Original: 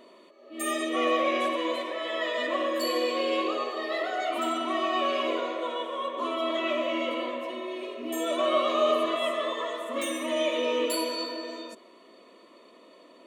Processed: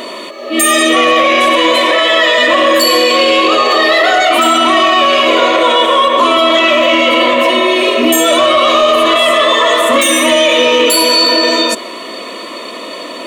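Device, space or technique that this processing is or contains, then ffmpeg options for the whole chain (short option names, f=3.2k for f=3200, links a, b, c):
mastering chain: -af "equalizer=f=390:t=o:w=0.3:g=-2.5,acompressor=threshold=-29dB:ratio=3,asoftclip=type=tanh:threshold=-22.5dB,tiltshelf=f=1.2k:g=-4,alimiter=level_in=31dB:limit=-1dB:release=50:level=0:latency=1,volume=-1dB"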